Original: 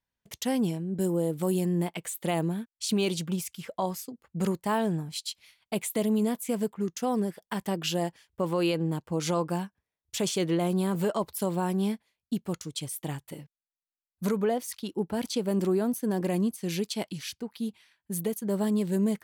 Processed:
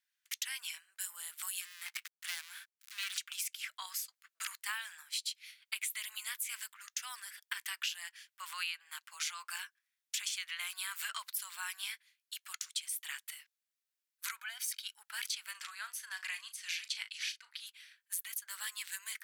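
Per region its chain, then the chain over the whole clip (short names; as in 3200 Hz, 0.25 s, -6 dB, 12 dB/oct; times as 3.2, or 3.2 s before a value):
1.61–3.18 switching dead time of 0.17 ms + compressor 2:1, threshold -31 dBFS
14.39–15 comb 1.3 ms, depth 50% + compressor 4:1, threshold -30 dBFS
15.51–17.67 air absorption 51 m + doubler 37 ms -12 dB
whole clip: steep high-pass 1400 Hz 36 dB/oct; dynamic EQ 2300 Hz, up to +4 dB, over -53 dBFS, Q 2.6; compressor 6:1, threshold -40 dBFS; gain +5 dB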